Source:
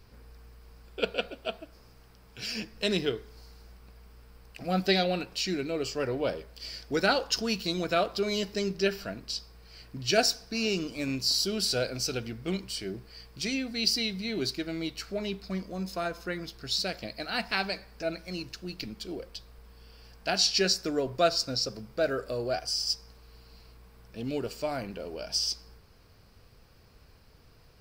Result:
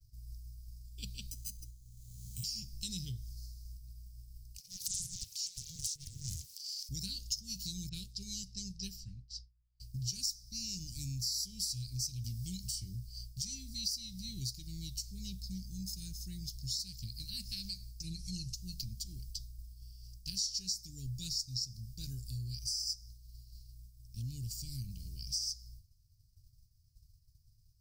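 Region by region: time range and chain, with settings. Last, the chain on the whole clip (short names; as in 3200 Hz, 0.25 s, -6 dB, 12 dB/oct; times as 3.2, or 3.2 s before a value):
1.31–2.44 careless resampling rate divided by 8×, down filtered, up hold + three-band squash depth 70%
4.58–6.89 transient shaper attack -11 dB, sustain +10 dB + brick-wall FIR high-pass 390 Hz + Doppler distortion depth 0.81 ms
7.89–9.8 low-pass opened by the level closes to 1400 Hz, open at -24 dBFS + upward expander, over -38 dBFS
12.24–12.85 doubler 22 ms -12.5 dB + three-band squash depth 70%
18.03–18.54 LPF 11000 Hz 24 dB/oct + comb 5.8 ms, depth 99%
whole clip: expander -46 dBFS; Chebyshev band-stop 120–5800 Hz, order 3; compressor 3:1, threshold -47 dBFS; gain +9 dB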